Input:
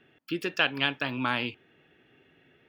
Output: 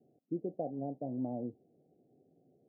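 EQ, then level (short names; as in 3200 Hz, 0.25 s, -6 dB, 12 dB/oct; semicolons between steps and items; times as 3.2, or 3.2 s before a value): HPF 120 Hz; rippled Chebyshev low-pass 760 Hz, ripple 3 dB; -2.0 dB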